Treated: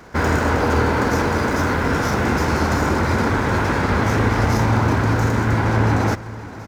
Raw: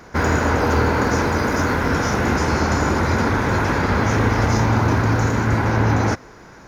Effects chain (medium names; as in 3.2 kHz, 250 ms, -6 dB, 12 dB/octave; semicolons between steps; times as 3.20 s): feedback delay 520 ms, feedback 57%, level -18 dB; sliding maximum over 3 samples